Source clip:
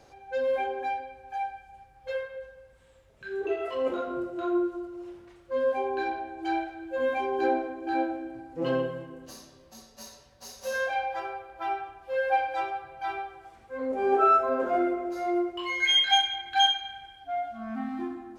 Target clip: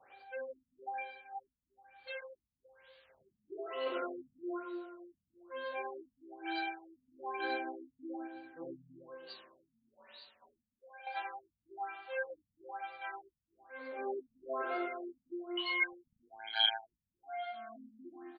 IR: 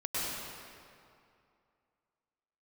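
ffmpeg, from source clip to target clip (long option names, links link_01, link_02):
-filter_complex "[0:a]adynamicequalizer=threshold=0.00794:dfrequency=350:dqfactor=2.4:tfrequency=350:tqfactor=2.4:attack=5:release=100:ratio=0.375:range=3:mode=boostabove:tftype=bell,asettb=1/sr,asplit=3[link_01][link_02][link_03];[link_01]atrim=end=10.524[link_04];[link_02]atrim=start=10.52:end=11.07,asetpts=PTS-STARTPTS,afade=type=in:duration=0.004:curve=qsin,afade=type=out:start_time=0.546:duration=0.004:curve=qsin,acompressor=threshold=-45dB:ratio=4[link_05];[link_03]atrim=start=11.066[link_06];[link_04][link_05]acrossfade=duration=0.004:curve1=hsin:curve2=qsin[link_07];[link_07][link_06]acrossfade=duration=0.004:curve1=qsin:curve2=hsin,aderivative,aecho=1:1:101:0.708,asplit=2[link_08][link_09];[1:a]atrim=start_sample=2205[link_10];[link_09][link_10]afir=irnorm=-1:irlink=0,volume=-23.5dB[link_11];[link_08][link_11]amix=inputs=2:normalize=0,aphaser=in_gain=1:out_gain=1:delay=3.4:decay=0.3:speed=0.25:type=sinusoidal,acompressor=mode=upward:threshold=-59dB:ratio=2.5,asplit=2[link_12][link_13];[link_13]adelay=272,lowpass=frequency=4000:poles=1,volume=-18dB,asplit=2[link_14][link_15];[link_15]adelay=272,lowpass=frequency=4000:poles=1,volume=0.29,asplit=2[link_16][link_17];[link_17]adelay=272,lowpass=frequency=4000:poles=1,volume=0.29[link_18];[link_14][link_16][link_18]amix=inputs=3:normalize=0[link_19];[link_12][link_19]amix=inputs=2:normalize=0,asplit=3[link_20][link_21][link_22];[link_20]afade=type=out:start_time=16.19:duration=0.02[link_23];[link_21]tremolo=f=110:d=0.974,afade=type=in:start_time=16.19:duration=0.02,afade=type=out:start_time=17.02:duration=0.02[link_24];[link_22]afade=type=in:start_time=17.02:duration=0.02[link_25];[link_23][link_24][link_25]amix=inputs=3:normalize=0,afftfilt=real='re*lt(b*sr/1024,240*pow(4800/240,0.5+0.5*sin(2*PI*1.1*pts/sr)))':imag='im*lt(b*sr/1024,240*pow(4800/240,0.5+0.5*sin(2*PI*1.1*pts/sr)))':win_size=1024:overlap=0.75,volume=7dB"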